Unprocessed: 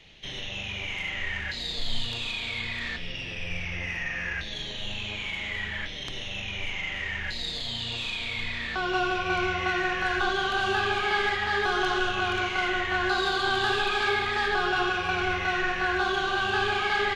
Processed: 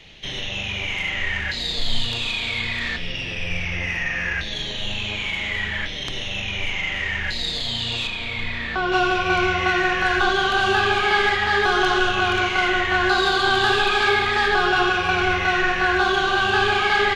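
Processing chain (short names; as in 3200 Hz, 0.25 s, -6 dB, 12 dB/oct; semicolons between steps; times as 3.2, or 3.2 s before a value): 8.07–8.92 high shelf 3800 Hz -10.5 dB; gain +7 dB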